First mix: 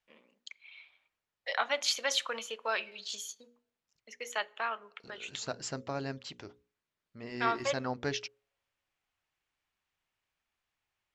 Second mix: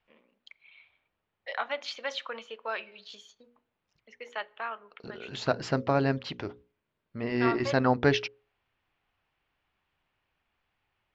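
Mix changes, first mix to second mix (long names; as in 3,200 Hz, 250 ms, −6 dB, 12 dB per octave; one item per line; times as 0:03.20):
second voice +12.0 dB
master: add high-frequency loss of the air 240 metres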